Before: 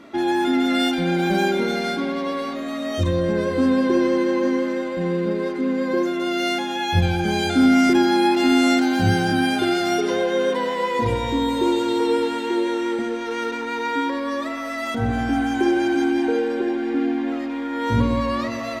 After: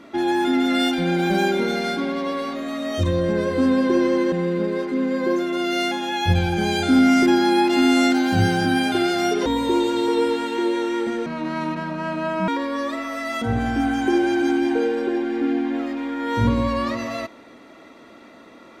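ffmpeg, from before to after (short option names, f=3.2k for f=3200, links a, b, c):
-filter_complex "[0:a]asplit=5[a][b][c][d][e];[a]atrim=end=4.322[f];[b]atrim=start=4.988:end=10.132[g];[c]atrim=start=11.378:end=13.184[h];[d]atrim=start=13.18:end=14.01,asetpts=PTS-STARTPTS,asetrate=29988,aresample=44100[i];[e]atrim=start=14.006[j];[f][g]acrossfade=d=0.004:c1=hsin:c2=hsin[k];[k][h]acrossfade=d=0.004:c1=hsin:c2=hsin[l];[l][i]acrossfade=d=0.004:c1=hsin:c2=hsin[m];[m][j]acrossfade=d=0.004:c1=hsin:c2=hsin"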